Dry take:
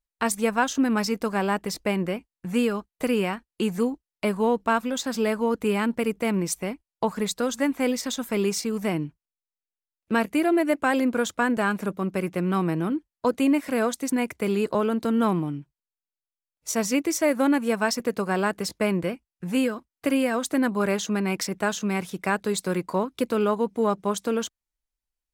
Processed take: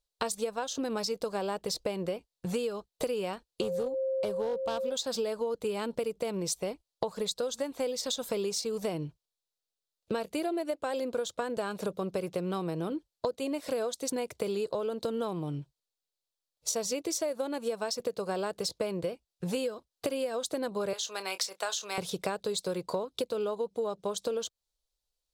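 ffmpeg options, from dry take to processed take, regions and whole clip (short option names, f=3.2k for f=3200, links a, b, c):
-filter_complex "[0:a]asettb=1/sr,asplit=3[a][b][c];[a]atrim=end=3.614[d];[b]atrim=start=3.61:end=4.92,asetpts=PTS-STARTPTS,afade=t=in:d=0.004:c=qsin,afade=t=out:st=1.306:d=0.004:c=qsin,equalizer=f=4.5k:w=0.39:g=-4.5,aeval=exprs='val(0)+0.0398*sin(2*PI*530*n/s)':c=same,asoftclip=type=hard:threshold=-19.5dB[e];[c]atrim=start=4.916[f];[d][e]acrossfade=d=0.004:c1=hsin:c2=qsin[g];[g][f]acrossfade=d=0.004:c1=qsin:c2=hsin,asettb=1/sr,asplit=3[h][i][j];[h]atrim=end=20.934[k];[i]atrim=start=20.93:end=21.98,asetpts=PTS-STARTPTS,afade=t=in:d=0.004:c=qsin,afade=t=out:st=1.046:d=0.004:c=qsin,highpass=910,asplit=2[l][m];[m]adelay=26,volume=-13dB[n];[l][n]amix=inputs=2:normalize=0,atrim=end_sample=46305[o];[j]atrim=start=21.976[p];[k][o]acrossfade=d=0.004:c1=hsin:c2=qsin[q];[q][p]acrossfade=d=0.004:c1=qsin:c2=hsin,equalizer=f=125:t=o:w=1:g=4,equalizer=f=250:t=o:w=1:g=-8,equalizer=f=500:t=o:w=1:g=10,equalizer=f=2k:t=o:w=1:g=-8,equalizer=f=4k:t=o:w=1:g=11,equalizer=f=8k:t=o:w=1:g=3,acompressor=threshold=-29dB:ratio=12"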